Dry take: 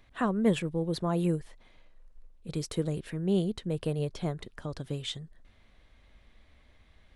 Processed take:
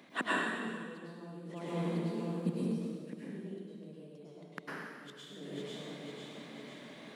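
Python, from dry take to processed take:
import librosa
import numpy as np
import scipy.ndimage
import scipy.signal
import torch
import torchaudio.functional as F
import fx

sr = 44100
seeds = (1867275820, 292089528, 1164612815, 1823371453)

y = fx.self_delay(x, sr, depth_ms=0.067)
y = fx.low_shelf(y, sr, hz=440.0, db=9.5)
y = fx.echo_feedback(y, sr, ms=500, feedback_pct=58, wet_db=-24.0)
y = fx.gate_flip(y, sr, shuts_db=-25.0, range_db=-35)
y = scipy.signal.sosfilt(scipy.signal.butter(6, 180.0, 'highpass', fs=sr, output='sos'), y)
y = fx.rev_plate(y, sr, seeds[0], rt60_s=1.7, hf_ratio=1.0, predelay_ms=90, drr_db=-7.5)
y = y * librosa.db_to_amplitude(5.0)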